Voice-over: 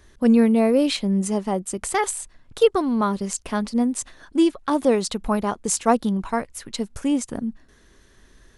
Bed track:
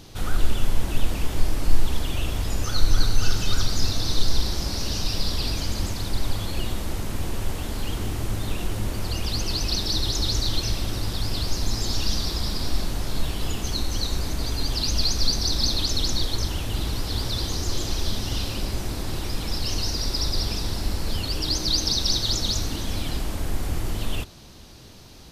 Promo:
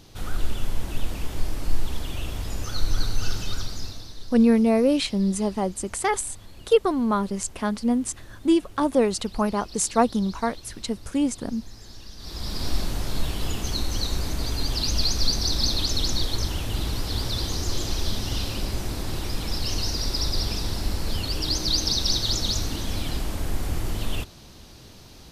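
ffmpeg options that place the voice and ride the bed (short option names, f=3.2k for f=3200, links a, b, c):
-filter_complex "[0:a]adelay=4100,volume=-1.5dB[a];[1:a]volume=13.5dB,afade=t=out:st=3.34:d=0.8:silence=0.199526,afade=t=in:st=12.17:d=0.52:silence=0.125893[b];[a][b]amix=inputs=2:normalize=0"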